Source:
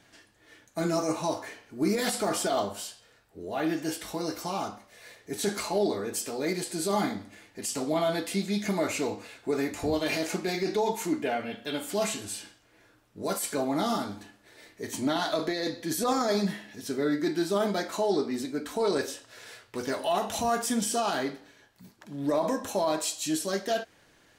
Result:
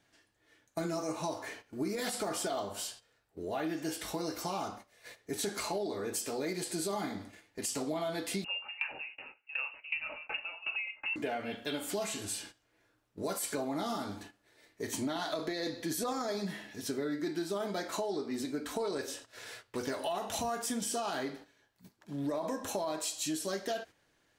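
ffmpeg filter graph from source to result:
-filter_complex "[0:a]asettb=1/sr,asplit=3[a][b][c];[a]atrim=end=8.444[d];[b]atrim=start=8.44:end=11.16,asetpts=PTS-STARTPTS,afade=t=in:d=0.004:c=qsin,afade=t=out:st=2.716:d=0.004:c=qsin,aecho=1:1:258:0.141,atrim=end_sample=119952,lowpass=f=2.6k:t=q:w=0.5098,lowpass=f=2.6k:t=q:w=0.6013,lowpass=f=2.6k:t=q:w=0.9,lowpass=f=2.6k:t=q:w=2.563,afreqshift=-3000,aeval=exprs='val(0)*pow(10,-22*if(lt(mod(2.7*n/s,1),2*abs(2.7)/1000),1-mod(2.7*n/s,1)/(2*abs(2.7)/1000),(mod(2.7*n/s,1)-2*abs(2.7)/1000)/(1-2*abs(2.7)/1000))/20)':c=same[e];[c]atrim=start=11.156[f];[d][e]acrossfade=d=0.004:c1=hsin:c2=qsin[g];[g][f]acrossfade=d=0.004:c1=qsin:c2=hsin,equalizer=f=210:w=6.3:g=-3.5,acompressor=threshold=-32dB:ratio=6,agate=range=-11dB:threshold=-49dB:ratio=16:detection=peak"

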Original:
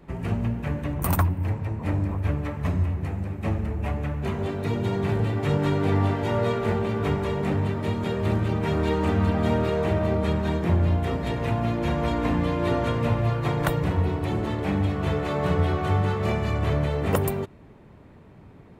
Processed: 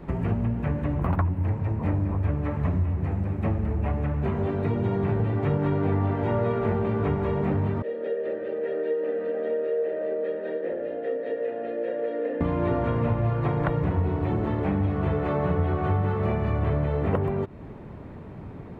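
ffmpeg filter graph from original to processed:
-filter_complex "[0:a]asettb=1/sr,asplit=3[a][b][c];[a]atrim=end=7.824[d];[b]atrim=start=7.82:end=12.41,asetpts=PTS-STARTPTS,afade=t=in:d=0.004:c=qsin,afade=t=out:st=4.586:d=0.004:c=qsin,asplit=3[e][f][g];[e]bandpass=f=530:t=q:w=8,volume=0dB[h];[f]bandpass=f=1.84k:t=q:w=8,volume=-6dB[i];[g]bandpass=f=2.48k:t=q:w=8,volume=-9dB[j];[h][i][j]amix=inputs=3:normalize=0,highpass=260,equalizer=f=270:t=q:w=4:g=9,equalizer=f=460:t=q:w=4:g=7,equalizer=f=1.2k:t=q:w=4:g=9,equalizer=f=2.5k:t=q:w=4:g=-7,lowpass=f=6.1k:w=0.5412,lowpass=f=6.1k:w=1.3066[k];[c]atrim=start=12.406[l];[d][k]acrossfade=d=0.004:c1=hsin:c2=qsin[m];[m][l]acrossfade=d=0.004:c1=qsin:c2=hsin,acrossover=split=2900[n][o];[o]acompressor=threshold=-58dB:ratio=4:attack=1:release=60[p];[n][p]amix=inputs=2:normalize=0,highshelf=f=2.8k:g=-11.5,acompressor=threshold=-35dB:ratio=2.5,volume=9dB"

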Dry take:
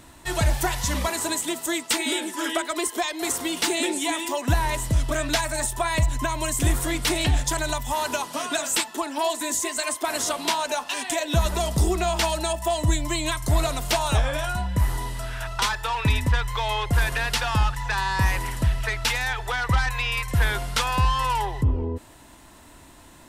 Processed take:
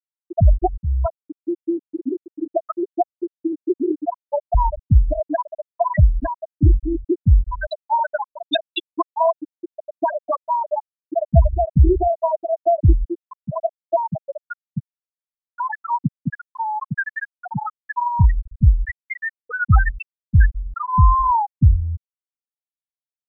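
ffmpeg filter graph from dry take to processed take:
-filter_complex "[0:a]asettb=1/sr,asplit=3[a][b][c];[a]atrim=end=4.054[d];[b]atrim=start=4.05:end=4.55,asetpts=PTS-STARTPTS,afade=t=in:d=0.004:c=qsin,afade=t=out:st=0.496:d=0.004:c=qsin,highpass=f=430:w=0.5412,highpass=f=430:w=1.3066,equalizer=f=2.1k:w=1:g=2.5[e];[c]atrim=start=4.546[f];[d][e]acrossfade=d=0.004:c1=hsin:c2=qsin[g];[g][f]acrossfade=d=0.004:c1=qsin:c2=hsin,asettb=1/sr,asplit=3[h][i][j];[h]atrim=end=7.714[k];[i]atrim=start=7.71:end=9.05,asetpts=PTS-STARTPTS,afade=t=in:d=0.004:c=qsin,afade=t=out:st=1.336:d=0.004:c=qsin,lowpass=7.7k,highshelf=f=2.7k:g=11.5[l];[j]atrim=start=9.046[m];[k][l]acrossfade=d=0.004:c1=hsin:c2=qsin[n];[n][m]acrossfade=d=0.004:c1=qsin:c2=hsin,asettb=1/sr,asplit=3[o][p][q];[o]atrim=end=9.944[r];[p]atrim=start=9.94:end=10.36,asetpts=PTS-STARTPTS,afade=t=in:d=0.004:c=qsin,afade=t=out:st=0.416:d=0.004:c=qsin,acontrast=55,asoftclip=type=hard:threshold=-20dB[s];[q]atrim=start=10.356[t];[r][s]acrossfade=d=0.004:c1=hsin:c2=qsin[u];[u][t]acrossfade=d=0.004:c1=qsin:c2=hsin,asettb=1/sr,asplit=3[v][w][x];[v]atrim=end=13.054[y];[w]atrim=start=13.05:end=18.16,asetpts=PTS-STARTPTS,afade=t=in:d=0.004:c=qsin,afade=t=out:st=5.106:d=0.004:c=qsin,highpass=f=150:w=0.5412,highpass=f=150:w=1.3066,aeval=exprs='sgn(val(0))*max(abs(val(0))-0.002,0)':c=same[z];[x]atrim=start=18.156[aa];[y][z]acrossfade=d=0.004:c1=hsin:c2=qsin[ab];[ab][aa]acrossfade=d=0.004:c1=qsin:c2=hsin,lowpass=f=3.8k:p=1,afftfilt=real='re*gte(hypot(re,im),0.398)':imag='im*gte(hypot(re,im),0.398)':win_size=1024:overlap=0.75,volume=9dB"

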